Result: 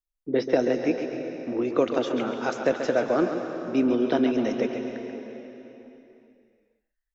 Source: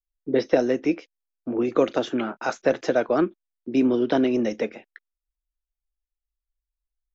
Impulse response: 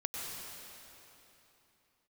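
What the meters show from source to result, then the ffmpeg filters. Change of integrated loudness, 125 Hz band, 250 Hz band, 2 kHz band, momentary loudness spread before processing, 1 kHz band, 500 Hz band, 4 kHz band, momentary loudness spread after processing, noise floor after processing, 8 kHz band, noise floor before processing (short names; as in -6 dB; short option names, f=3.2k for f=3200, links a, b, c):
-2.0 dB, -1.0 dB, -1.5 dB, -1.0 dB, 9 LU, -1.0 dB, -1.0 dB, -1.0 dB, 13 LU, -83 dBFS, n/a, under -85 dBFS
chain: -filter_complex "[0:a]asplit=2[a][b];[1:a]atrim=start_sample=2205,adelay=136[c];[b][c]afir=irnorm=-1:irlink=0,volume=-7dB[d];[a][d]amix=inputs=2:normalize=0,volume=-2.5dB"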